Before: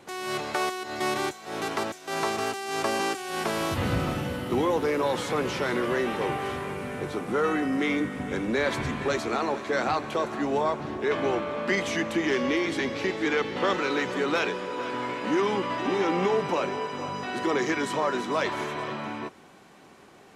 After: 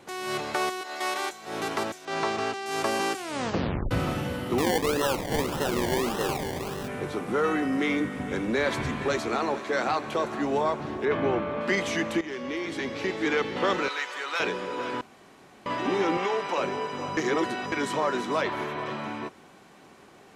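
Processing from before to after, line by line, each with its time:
0:00.81–0:01.32: high-pass filter 520 Hz
0:02.05–0:02.66: low-pass filter 5,600 Hz
0:03.19: tape stop 0.72 s
0:04.58–0:06.88: sample-and-hold swept by an LFO 27×, swing 60% 1.7 Hz
0:09.59–0:10.06: low-shelf EQ 120 Hz −9.5 dB
0:11.05–0:11.61: bass and treble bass +5 dB, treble −13 dB
0:12.21–0:13.28: fade in, from −12.5 dB
0:13.88–0:14.40: high-pass filter 1,000 Hz
0:15.01–0:15.66: fill with room tone
0:16.17–0:16.58: meter weighting curve A
0:17.17–0:17.72: reverse
0:18.41–0:18.86: parametric band 7,700 Hz −9 dB 1.4 octaves

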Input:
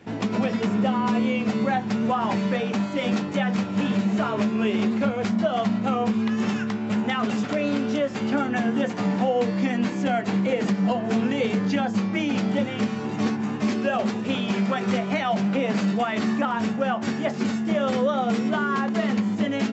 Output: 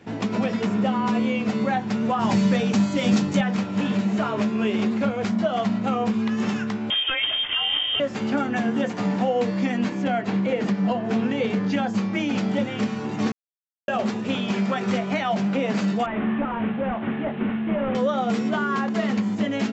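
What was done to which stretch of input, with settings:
0:02.19–0:03.41: bass and treble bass +8 dB, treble +10 dB
0:06.90–0:08.00: voice inversion scrambler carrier 3,400 Hz
0:09.89–0:11.72: high-frequency loss of the air 73 metres
0:13.32–0:13.88: silence
0:16.06–0:17.95: linear delta modulator 16 kbit/s, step −35.5 dBFS

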